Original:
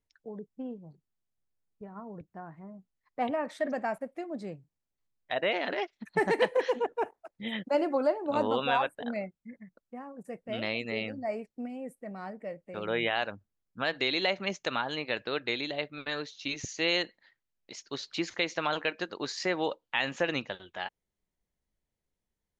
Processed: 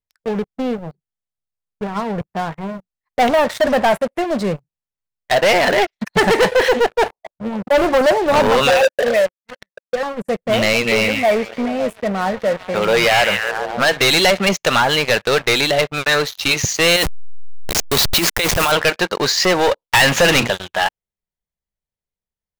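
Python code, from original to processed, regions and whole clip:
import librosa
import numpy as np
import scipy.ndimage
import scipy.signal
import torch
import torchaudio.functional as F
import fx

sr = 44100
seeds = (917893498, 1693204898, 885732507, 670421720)

y = fx.chain(x, sr, fx.brickwall_lowpass(high_hz=1200.0),
    fx.upward_expand(threshold_db=-34.0, expansion=1.5), at=(7.12, 7.78))
y = fx.chain(y, sr, fx.vowel_filter(vowel='e'),
    fx.leveller(passes=3), at=(8.7, 10.03))
y = fx.chain(y, sr, fx.highpass(hz=140.0, slope=12),
    fx.echo_stepped(ms=139, hz=2800.0, octaves=-0.7, feedback_pct=70, wet_db=-6.5), at=(10.73, 13.94))
y = fx.chain(y, sr, fx.delta_hold(step_db=-37.5),
    fx.high_shelf(hz=4800.0, db=10.5),
    fx.over_compress(threshold_db=-33.0, ratio=-1.0), at=(16.96, 18.72))
y = fx.chain(y, sr, fx.hum_notches(base_hz=60, count=6),
    fx.leveller(passes=2), at=(19.83, 20.5))
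y = fx.high_shelf(y, sr, hz=4300.0, db=-2.0)
y = fx.leveller(y, sr, passes=5)
y = fx.peak_eq(y, sr, hz=290.0, db=-9.0, octaves=0.57)
y = y * 10.0 ** (4.5 / 20.0)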